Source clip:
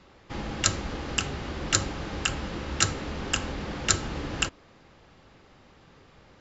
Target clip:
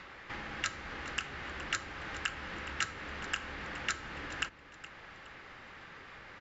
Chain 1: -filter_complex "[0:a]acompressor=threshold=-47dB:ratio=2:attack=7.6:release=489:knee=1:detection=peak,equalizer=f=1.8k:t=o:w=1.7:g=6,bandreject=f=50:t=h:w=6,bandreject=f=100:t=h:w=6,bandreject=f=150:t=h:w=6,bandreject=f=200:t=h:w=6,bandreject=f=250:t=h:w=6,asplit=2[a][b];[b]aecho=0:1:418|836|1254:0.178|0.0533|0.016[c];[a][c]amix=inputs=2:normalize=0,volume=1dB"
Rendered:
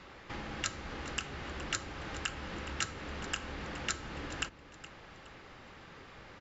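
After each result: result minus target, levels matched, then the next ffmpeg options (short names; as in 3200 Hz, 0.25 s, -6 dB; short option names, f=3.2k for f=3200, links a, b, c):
compressor: peak gain reduction -4.5 dB; 2000 Hz band -3.0 dB
-filter_complex "[0:a]acompressor=threshold=-56dB:ratio=2:attack=7.6:release=489:knee=1:detection=peak,equalizer=f=1.8k:t=o:w=1.7:g=6,bandreject=f=50:t=h:w=6,bandreject=f=100:t=h:w=6,bandreject=f=150:t=h:w=6,bandreject=f=200:t=h:w=6,bandreject=f=250:t=h:w=6,asplit=2[a][b];[b]aecho=0:1:418|836|1254:0.178|0.0533|0.016[c];[a][c]amix=inputs=2:normalize=0,volume=1dB"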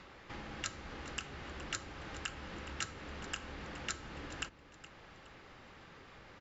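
2000 Hz band -3.0 dB
-filter_complex "[0:a]acompressor=threshold=-56dB:ratio=2:attack=7.6:release=489:knee=1:detection=peak,equalizer=f=1.8k:t=o:w=1.7:g=15,bandreject=f=50:t=h:w=6,bandreject=f=100:t=h:w=6,bandreject=f=150:t=h:w=6,bandreject=f=200:t=h:w=6,bandreject=f=250:t=h:w=6,asplit=2[a][b];[b]aecho=0:1:418|836|1254:0.178|0.0533|0.016[c];[a][c]amix=inputs=2:normalize=0,volume=1dB"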